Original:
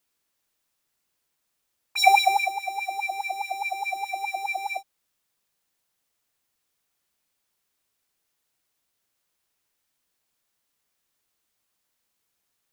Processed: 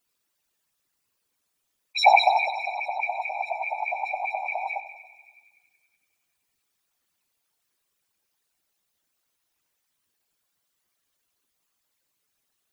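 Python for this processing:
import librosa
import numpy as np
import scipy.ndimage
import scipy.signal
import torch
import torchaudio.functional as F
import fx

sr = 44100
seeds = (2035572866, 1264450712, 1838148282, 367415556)

y = fx.spec_expand(x, sr, power=2.1)
y = fx.echo_thinned(y, sr, ms=94, feedback_pct=76, hz=670.0, wet_db=-12.5)
y = fx.whisperise(y, sr, seeds[0])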